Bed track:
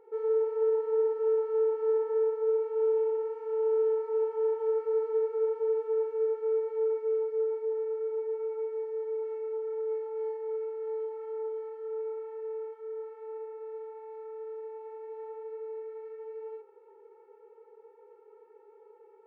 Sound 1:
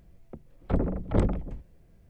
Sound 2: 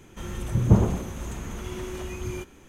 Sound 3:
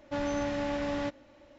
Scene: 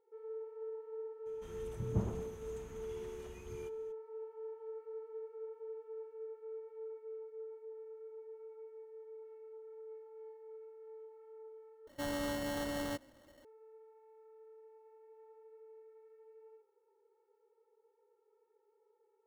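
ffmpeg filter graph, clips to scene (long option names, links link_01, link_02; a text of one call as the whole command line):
ffmpeg -i bed.wav -i cue0.wav -i cue1.wav -i cue2.wav -filter_complex "[0:a]volume=-17.5dB[link_01];[3:a]acrusher=samples=18:mix=1:aa=0.000001[link_02];[link_01]asplit=2[link_03][link_04];[link_03]atrim=end=11.874[link_05];[link_02]atrim=end=1.58,asetpts=PTS-STARTPTS,volume=-6dB[link_06];[link_04]atrim=start=13.446[link_07];[2:a]atrim=end=2.68,asetpts=PTS-STARTPTS,volume=-17dB,afade=type=in:duration=0.02,afade=type=out:start_time=2.66:duration=0.02,adelay=1250[link_08];[link_05][link_06]acrossfade=duration=0.004:curve1=hsin:curve2=hsin[link_09];[link_09][link_07]acrossfade=duration=0.004:curve1=hsin:curve2=hsin[link_10];[link_10][link_08]amix=inputs=2:normalize=0" out.wav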